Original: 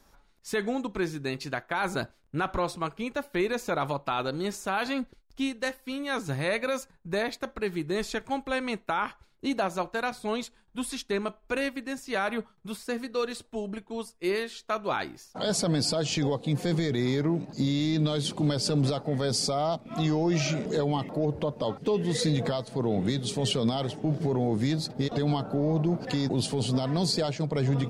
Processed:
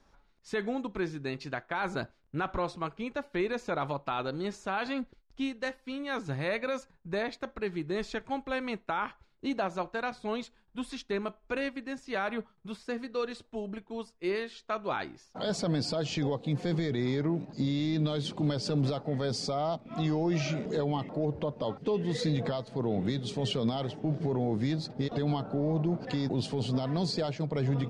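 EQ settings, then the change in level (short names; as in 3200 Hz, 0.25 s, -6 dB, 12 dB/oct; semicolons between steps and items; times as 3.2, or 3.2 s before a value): air absorption 93 m; -3.0 dB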